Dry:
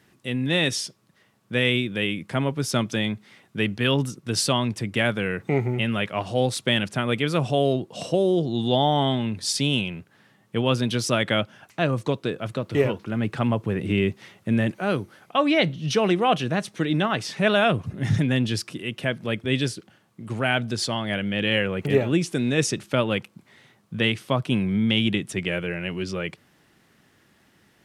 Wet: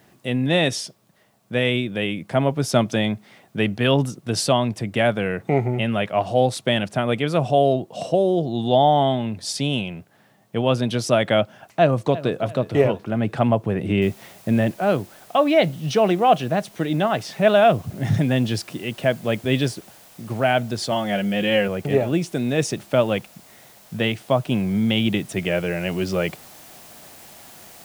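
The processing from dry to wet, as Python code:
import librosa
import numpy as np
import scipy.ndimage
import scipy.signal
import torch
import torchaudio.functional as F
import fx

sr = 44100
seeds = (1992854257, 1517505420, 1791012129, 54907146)

y = fx.echo_throw(x, sr, start_s=11.8, length_s=0.64, ms=340, feedback_pct=40, wet_db=-16.5)
y = fx.noise_floor_step(y, sr, seeds[0], at_s=14.02, before_db=-68, after_db=-49, tilt_db=0.0)
y = fx.comb(y, sr, ms=5.5, depth=0.65, at=(20.91, 21.68))
y = fx.peak_eq(y, sr, hz=160.0, db=3.0, octaves=2.5)
y = fx.rider(y, sr, range_db=10, speed_s=2.0)
y = fx.peak_eq(y, sr, hz=680.0, db=10.0, octaves=0.73)
y = y * librosa.db_to_amplitude(-1.5)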